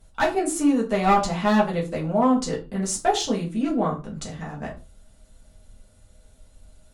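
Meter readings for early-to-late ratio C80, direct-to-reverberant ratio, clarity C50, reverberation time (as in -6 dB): 16.5 dB, -4.5 dB, 11.0 dB, no single decay rate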